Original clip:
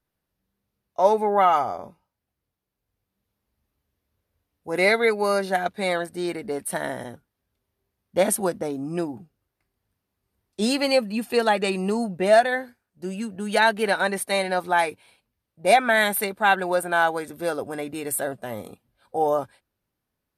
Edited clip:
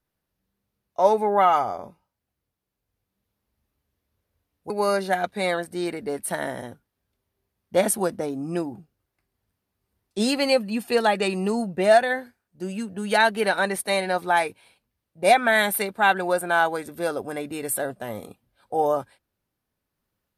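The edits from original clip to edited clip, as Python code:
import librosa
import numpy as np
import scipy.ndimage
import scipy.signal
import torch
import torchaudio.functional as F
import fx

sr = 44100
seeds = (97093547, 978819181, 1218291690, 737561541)

y = fx.edit(x, sr, fx.cut(start_s=4.7, length_s=0.42), tone=tone)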